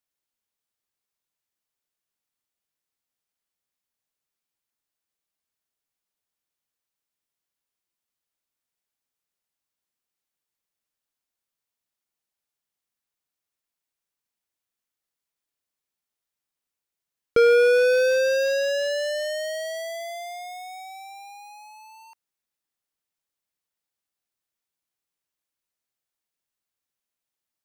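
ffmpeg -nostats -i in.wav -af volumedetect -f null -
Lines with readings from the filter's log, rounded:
mean_volume: -31.0 dB
max_volume: -12.5 dB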